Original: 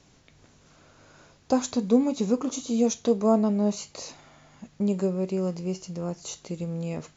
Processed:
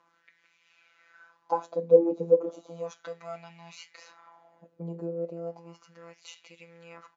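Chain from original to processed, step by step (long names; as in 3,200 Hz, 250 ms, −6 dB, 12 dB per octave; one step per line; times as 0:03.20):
comb filter 3.9 ms, depth 37%
phases set to zero 168 Hz
LFO wah 0.35 Hz 440–2,500 Hz, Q 4
phase shifter 0.47 Hz, delay 1.6 ms, feedback 22%
level +7 dB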